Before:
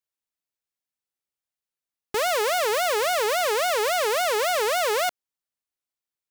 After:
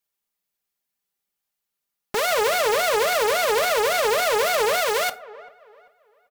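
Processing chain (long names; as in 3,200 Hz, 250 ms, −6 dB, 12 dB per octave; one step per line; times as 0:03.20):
parametric band 14,000 Hz +7.5 dB 0.27 octaves
comb filter 5 ms, depth 58%
delay with a low-pass on its return 391 ms, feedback 32%, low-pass 1,800 Hz, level −23 dB
convolution reverb RT60 0.30 s, pre-delay 3 ms, DRR 11 dB
brickwall limiter −19 dBFS, peak gain reduction 7 dB
0:02.28–0:04.81: low-shelf EQ 440 Hz +6 dB
highs frequency-modulated by the lows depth 0.45 ms
level +5 dB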